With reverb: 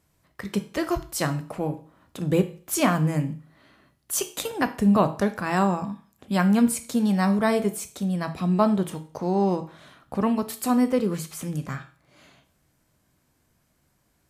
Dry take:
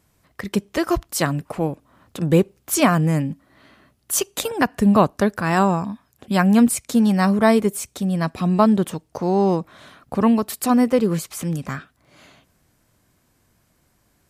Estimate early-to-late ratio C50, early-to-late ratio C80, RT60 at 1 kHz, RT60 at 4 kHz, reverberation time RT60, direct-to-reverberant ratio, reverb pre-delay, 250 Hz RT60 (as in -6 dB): 14.0 dB, 19.0 dB, 0.40 s, 0.40 s, 0.40 s, 8.5 dB, 14 ms, 0.45 s